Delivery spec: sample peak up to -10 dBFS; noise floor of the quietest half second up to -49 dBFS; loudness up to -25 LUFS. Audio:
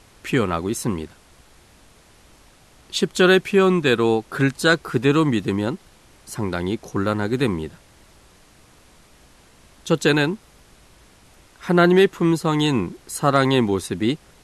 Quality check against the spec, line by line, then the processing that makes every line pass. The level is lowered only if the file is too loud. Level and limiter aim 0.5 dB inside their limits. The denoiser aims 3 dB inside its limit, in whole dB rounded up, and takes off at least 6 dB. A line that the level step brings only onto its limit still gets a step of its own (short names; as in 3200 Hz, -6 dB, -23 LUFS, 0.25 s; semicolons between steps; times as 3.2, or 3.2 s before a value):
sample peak -3.5 dBFS: fail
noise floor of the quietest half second -52 dBFS: OK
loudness -20.0 LUFS: fail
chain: gain -5.5 dB; limiter -10.5 dBFS